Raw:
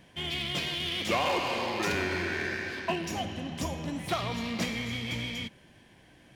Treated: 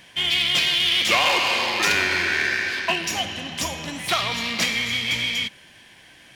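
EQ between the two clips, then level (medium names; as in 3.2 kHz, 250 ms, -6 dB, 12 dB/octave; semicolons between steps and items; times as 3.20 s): tilt shelf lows -9.5 dB, about 1.1 kHz; treble shelf 4.1 kHz -6 dB; +8.5 dB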